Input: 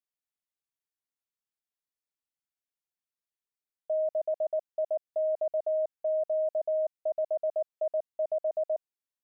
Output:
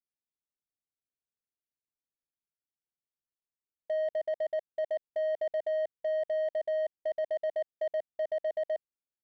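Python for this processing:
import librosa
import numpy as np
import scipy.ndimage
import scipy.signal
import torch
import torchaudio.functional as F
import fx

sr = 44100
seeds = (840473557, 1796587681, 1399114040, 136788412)

y = fx.wiener(x, sr, points=41)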